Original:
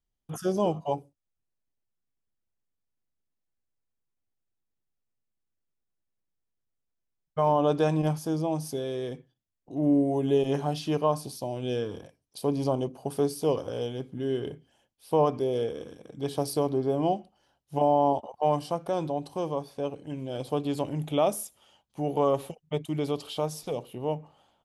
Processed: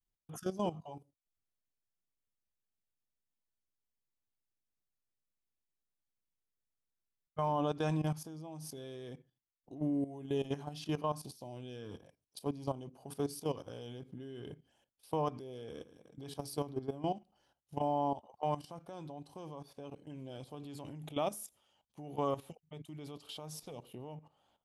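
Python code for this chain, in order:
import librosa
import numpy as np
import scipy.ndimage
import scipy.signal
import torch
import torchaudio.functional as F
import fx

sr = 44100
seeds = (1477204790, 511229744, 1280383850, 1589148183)

y = fx.dynamic_eq(x, sr, hz=500.0, q=1.2, threshold_db=-37.0, ratio=4.0, max_db=-6)
y = fx.level_steps(y, sr, step_db=14)
y = F.gain(torch.from_numpy(y), -4.0).numpy()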